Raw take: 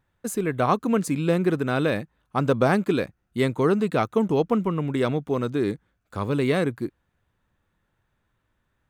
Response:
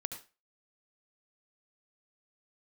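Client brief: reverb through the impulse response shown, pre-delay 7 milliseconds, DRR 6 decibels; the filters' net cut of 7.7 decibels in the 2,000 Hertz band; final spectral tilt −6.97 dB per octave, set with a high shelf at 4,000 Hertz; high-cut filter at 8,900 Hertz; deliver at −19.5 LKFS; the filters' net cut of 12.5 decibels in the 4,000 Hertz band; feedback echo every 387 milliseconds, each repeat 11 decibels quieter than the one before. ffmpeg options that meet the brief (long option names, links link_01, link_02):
-filter_complex "[0:a]lowpass=8900,equalizer=frequency=2000:width_type=o:gain=-7,highshelf=frequency=4000:gain=-9,equalizer=frequency=4000:width_type=o:gain=-8,aecho=1:1:387|774|1161:0.282|0.0789|0.0221,asplit=2[link_01][link_02];[1:a]atrim=start_sample=2205,adelay=7[link_03];[link_02][link_03]afir=irnorm=-1:irlink=0,volume=-5.5dB[link_04];[link_01][link_04]amix=inputs=2:normalize=0,volume=4dB"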